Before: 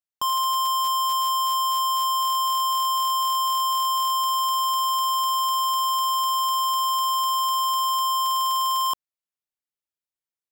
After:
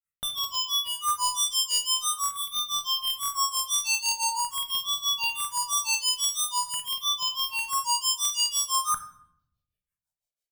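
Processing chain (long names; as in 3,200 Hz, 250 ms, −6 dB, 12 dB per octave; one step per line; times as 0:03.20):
comb filter 1.5 ms, depth 76%
granular cloud 178 ms, grains 6 per second, spray 14 ms, pitch spread up and down by 3 semitones
all-pass phaser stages 4, 0.45 Hz, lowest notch 160–1,800 Hz
convolution reverb RT60 0.75 s, pre-delay 7 ms, DRR 7 dB
level +4.5 dB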